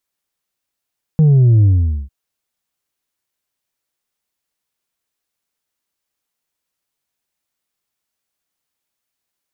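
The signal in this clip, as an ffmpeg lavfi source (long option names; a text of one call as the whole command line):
ffmpeg -f lavfi -i "aevalsrc='0.422*clip((0.9-t)/0.45,0,1)*tanh(1.41*sin(2*PI*160*0.9/log(65/160)*(exp(log(65/160)*t/0.9)-1)))/tanh(1.41)':duration=0.9:sample_rate=44100" out.wav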